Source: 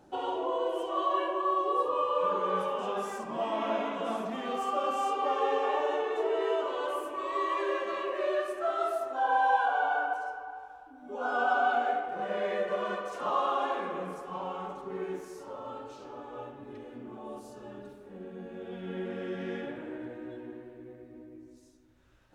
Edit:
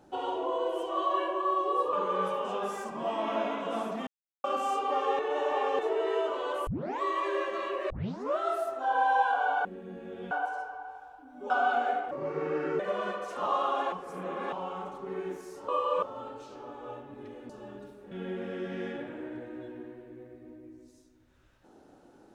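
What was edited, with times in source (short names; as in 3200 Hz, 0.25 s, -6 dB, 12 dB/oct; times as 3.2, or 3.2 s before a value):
1.93–2.27 move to 15.52
4.41–4.78 mute
5.53–6.13 reverse
7.01 tape start 0.34 s
8.24 tape start 0.48 s
11.18–11.5 cut
12.11–12.63 speed 76%
13.76–14.36 reverse
16.99–17.52 cut
18.14–18.8 move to 9.99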